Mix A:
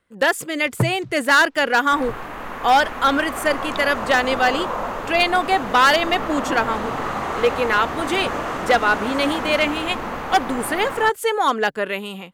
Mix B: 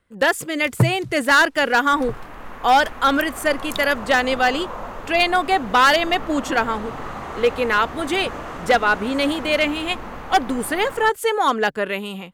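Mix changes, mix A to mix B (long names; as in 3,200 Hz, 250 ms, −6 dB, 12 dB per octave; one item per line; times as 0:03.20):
first sound: remove high-frequency loss of the air 130 metres
second sound −7.0 dB
master: add low-shelf EQ 110 Hz +9 dB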